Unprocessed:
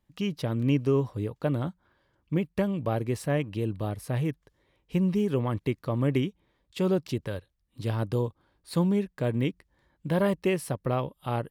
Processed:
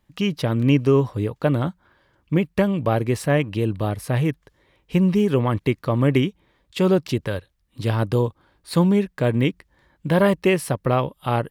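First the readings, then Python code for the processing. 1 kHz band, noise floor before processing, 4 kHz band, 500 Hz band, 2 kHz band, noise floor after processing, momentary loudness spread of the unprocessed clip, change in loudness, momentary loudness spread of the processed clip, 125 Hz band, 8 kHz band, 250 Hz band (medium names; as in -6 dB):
+9.0 dB, -75 dBFS, +9.0 dB, +7.5 dB, +10.0 dB, -68 dBFS, 8 LU, +7.5 dB, 8 LU, +7.0 dB, +7.5 dB, +7.0 dB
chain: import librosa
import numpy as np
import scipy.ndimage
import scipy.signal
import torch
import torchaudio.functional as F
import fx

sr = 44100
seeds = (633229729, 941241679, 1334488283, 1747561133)

y = fx.peak_eq(x, sr, hz=1800.0, db=3.0, octaves=2.3)
y = y * 10.0 ** (7.0 / 20.0)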